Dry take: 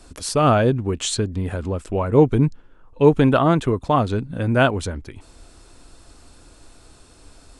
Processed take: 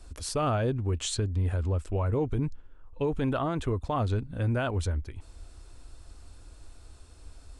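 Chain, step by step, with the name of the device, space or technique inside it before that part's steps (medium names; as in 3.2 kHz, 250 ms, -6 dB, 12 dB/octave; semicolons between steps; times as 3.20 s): car stereo with a boomy subwoofer (resonant low shelf 110 Hz +8.5 dB, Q 1.5; peak limiter -12 dBFS, peak gain reduction 9.5 dB); trim -8 dB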